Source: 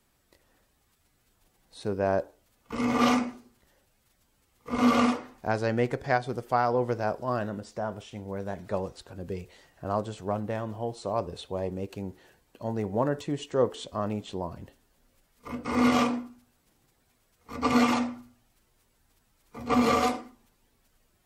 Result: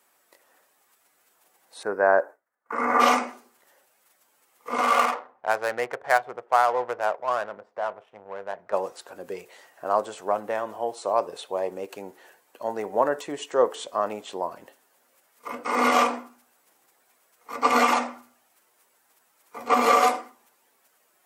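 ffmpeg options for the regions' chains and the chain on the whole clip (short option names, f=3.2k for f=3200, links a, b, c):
-filter_complex "[0:a]asettb=1/sr,asplit=3[a][b][c];[a]atrim=end=1.834[d];[b]atrim=start=1.83:end=3,asetpts=PTS-STARTPTS,afade=t=in:d=0.004:c=qsin,afade=t=out:st=1.166:d=0.004:c=qsin,agate=range=-33dB:threshold=-56dB:ratio=3:release=100:detection=peak,highshelf=f=2.3k:t=q:w=3:g=-10.5[e];[c]atrim=start=2.996[f];[d][e]acrossfade=d=0.004:c1=hsin:c2=qsin[g];[g][f]acrossfade=d=0.004:c1=qsin:c2=hsin,asettb=1/sr,asplit=3[h][i][j];[h]atrim=end=4.814[k];[i]atrim=start=4.81:end=8.73,asetpts=PTS-STARTPTS,afade=t=in:d=0.004:c=qsin,afade=t=out:st=3.916:d=0.004:c=qsin,equalizer=f=280:t=o:w=1.3:g=-11.5,adynamicsmooth=sensitivity=6.5:basefreq=690,highpass=51[l];[j]atrim=start=8.726[m];[k][l]acrossfade=d=0.004:c1=hsin:c2=qsin[n];[n][m]acrossfade=d=0.004:c1=qsin:c2=hsin,highpass=590,equalizer=f=4k:w=0.84:g=-7,volume=9dB"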